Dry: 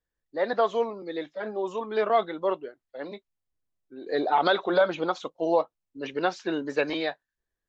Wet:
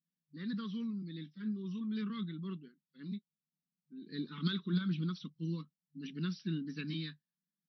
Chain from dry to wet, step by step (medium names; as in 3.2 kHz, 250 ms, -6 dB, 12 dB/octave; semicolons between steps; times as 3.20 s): Chebyshev band-stop 190–2600 Hz, order 3; resonant high shelf 1.6 kHz -14 dB, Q 3; FFT band-pass 150–5900 Hz; trim +9.5 dB